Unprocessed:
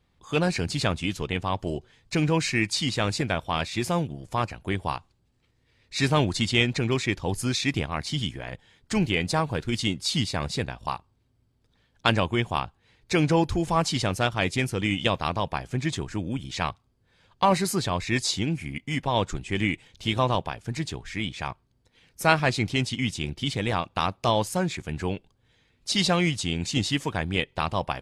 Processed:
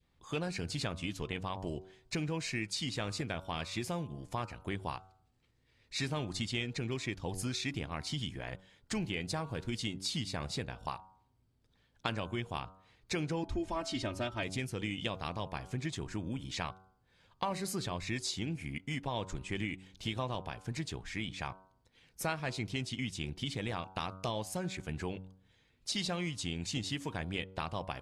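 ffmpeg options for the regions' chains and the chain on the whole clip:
-filter_complex "[0:a]asettb=1/sr,asplit=3[s0][s1][s2];[s0]atrim=end=13.434[s3];[s1]atrim=start=13.43:end=14.43,asetpts=PTS-STARTPTS,afade=t=in:d=0.004:c=qsin,afade=t=out:st=0.996:d=0.004:c=qsin,lowpass=f=3300:p=1,aecho=1:1:3.2:0.88,atrim=end_sample=44100[s4];[s2]atrim=start=14.426[s5];[s3][s4]acrossfade=d=0.004:c1=hsin:c2=qsin[s6];[s6][s5]acrossfade=d=0.004:c1=qsin:c2=hsin,bandreject=f=94.29:t=h:w=4,bandreject=f=188.58:t=h:w=4,bandreject=f=282.87:t=h:w=4,bandreject=f=377.16:t=h:w=4,bandreject=f=471.45:t=h:w=4,bandreject=f=565.74:t=h:w=4,bandreject=f=660.03:t=h:w=4,bandreject=f=754.32:t=h:w=4,bandreject=f=848.61:t=h:w=4,bandreject=f=942.9:t=h:w=4,bandreject=f=1037.19:t=h:w=4,bandreject=f=1131.48:t=h:w=4,bandreject=f=1225.77:t=h:w=4,bandreject=f=1320.06:t=h:w=4,bandreject=f=1414.35:t=h:w=4,bandreject=f=1508.64:t=h:w=4,adynamicequalizer=threshold=0.0158:dfrequency=1000:dqfactor=0.9:tfrequency=1000:tqfactor=0.9:attack=5:release=100:ratio=0.375:range=2.5:mode=cutabove:tftype=bell,acompressor=threshold=0.0355:ratio=3,volume=0.562"

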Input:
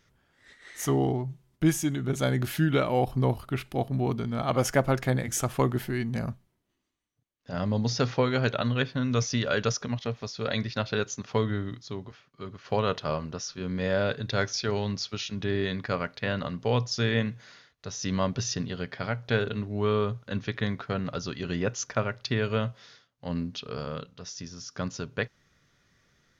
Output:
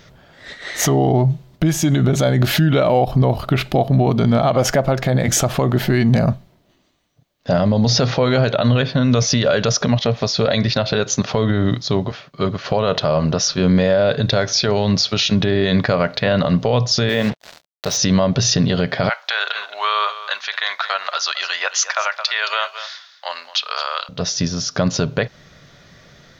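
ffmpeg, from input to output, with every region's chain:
-filter_complex "[0:a]asettb=1/sr,asplit=3[s0][s1][s2];[s0]atrim=end=17.094[s3];[s1]atrim=start=17.09:end=17.97,asetpts=PTS-STARTPTS,afade=t=in:d=0.004:c=qsin,afade=t=out:st=0.876:d=0.004:c=qsin,highpass=f=240:p=1,acrusher=bits=6:mix=0:aa=0.5[s4];[s2]atrim=start=17.966[s5];[s3][s4]acrossfade=d=0.004:c1=hsin:c2=qsin[s6];[s6][s5]acrossfade=d=0.004:c1=qsin:c2=hsin,asettb=1/sr,asplit=3[s7][s8][s9];[s7]atrim=end=19.094[s10];[s8]atrim=start=19.09:end=24.09,asetpts=PTS-STARTPTS,afade=t=in:d=0.004:c=qsin,afade=t=out:st=4.996:d=0.004:c=qsin,highpass=f=960:w=0.5412,highpass=f=960:w=1.3066,aecho=1:1:218:0.168,atrim=end_sample=220500[s11];[s9]atrim=start=24.086[s12];[s10][s11]acrossfade=d=0.004:c1=hsin:c2=qsin[s13];[s13][s12]acrossfade=d=0.004:c1=qsin:c2=hsin,equalizer=f=160:t=o:w=0.67:g=5,equalizer=f=630:t=o:w=0.67:g=9,equalizer=f=4000:t=o:w=0.67:g=5,equalizer=f=10000:t=o:w=0.67:g=-9,acompressor=threshold=0.0501:ratio=3,alimiter=level_in=15:limit=0.891:release=50:level=0:latency=1,volume=0.501"

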